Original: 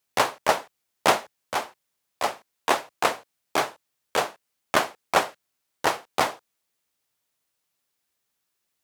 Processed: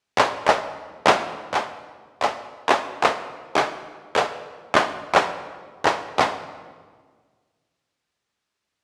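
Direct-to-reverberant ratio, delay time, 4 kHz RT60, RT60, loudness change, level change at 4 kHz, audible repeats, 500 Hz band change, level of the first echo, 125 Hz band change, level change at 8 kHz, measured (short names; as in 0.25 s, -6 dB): 10.0 dB, none, 1.2 s, 1.6 s, +3.5 dB, +2.0 dB, none, +4.0 dB, none, +4.5 dB, -3.0 dB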